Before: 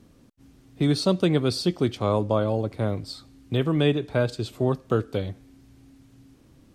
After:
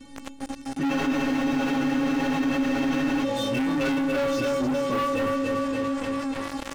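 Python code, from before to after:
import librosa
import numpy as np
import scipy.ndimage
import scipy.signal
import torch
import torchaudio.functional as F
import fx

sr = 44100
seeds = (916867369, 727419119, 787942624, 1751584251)

y = fx.partial_stretch(x, sr, pct=91)
y = fx.stiff_resonator(y, sr, f0_hz=270.0, decay_s=0.73, stiffness=0.008)
y = fx.echo_feedback(y, sr, ms=288, feedback_pct=56, wet_db=-7.0)
y = fx.leveller(y, sr, passes=5)
y = fx.spec_freeze(y, sr, seeds[0], at_s=0.93, hold_s=2.32)
y = fx.env_flatten(y, sr, amount_pct=70)
y = y * librosa.db_to_amplitude(4.5)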